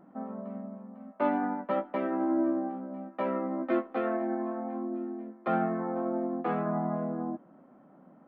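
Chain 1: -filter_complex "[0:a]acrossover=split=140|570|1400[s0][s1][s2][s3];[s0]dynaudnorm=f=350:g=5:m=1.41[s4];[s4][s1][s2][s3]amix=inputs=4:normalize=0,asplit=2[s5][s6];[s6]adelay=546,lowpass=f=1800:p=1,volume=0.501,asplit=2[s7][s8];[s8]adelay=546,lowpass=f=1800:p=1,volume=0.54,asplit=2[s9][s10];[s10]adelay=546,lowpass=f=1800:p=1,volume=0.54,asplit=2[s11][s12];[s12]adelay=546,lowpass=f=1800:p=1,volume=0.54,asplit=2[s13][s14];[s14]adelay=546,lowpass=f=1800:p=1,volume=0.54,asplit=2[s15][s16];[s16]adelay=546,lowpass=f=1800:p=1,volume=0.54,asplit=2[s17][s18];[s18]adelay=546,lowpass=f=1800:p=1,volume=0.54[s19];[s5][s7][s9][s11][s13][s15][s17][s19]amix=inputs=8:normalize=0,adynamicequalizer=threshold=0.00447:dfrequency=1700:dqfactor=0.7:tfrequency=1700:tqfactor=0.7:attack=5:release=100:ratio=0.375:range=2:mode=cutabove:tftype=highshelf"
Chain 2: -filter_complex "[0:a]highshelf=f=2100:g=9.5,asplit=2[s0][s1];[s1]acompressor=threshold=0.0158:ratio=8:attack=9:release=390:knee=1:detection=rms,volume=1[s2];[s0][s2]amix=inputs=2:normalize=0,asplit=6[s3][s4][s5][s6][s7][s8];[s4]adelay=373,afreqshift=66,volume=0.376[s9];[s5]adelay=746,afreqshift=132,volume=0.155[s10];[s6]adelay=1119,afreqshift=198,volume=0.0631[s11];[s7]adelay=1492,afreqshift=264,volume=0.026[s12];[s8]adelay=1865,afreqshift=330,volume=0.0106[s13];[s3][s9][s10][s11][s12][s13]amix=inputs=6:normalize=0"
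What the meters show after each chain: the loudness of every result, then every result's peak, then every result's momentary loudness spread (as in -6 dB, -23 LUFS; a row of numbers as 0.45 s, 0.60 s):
-31.5 LUFS, -28.5 LUFS; -14.0 dBFS, -12.0 dBFS; 11 LU, 10 LU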